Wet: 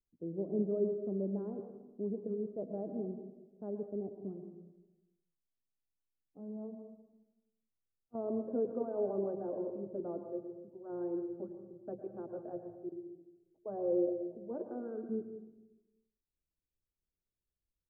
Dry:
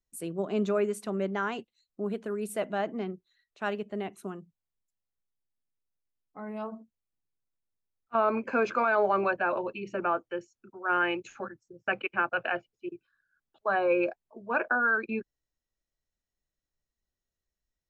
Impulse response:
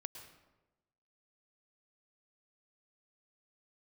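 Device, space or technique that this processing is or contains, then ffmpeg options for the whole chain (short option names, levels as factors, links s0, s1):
next room: -filter_complex "[0:a]lowpass=f=510:w=0.5412,lowpass=f=510:w=1.3066[s0];[1:a]atrim=start_sample=2205[s1];[s0][s1]afir=irnorm=-1:irlink=0"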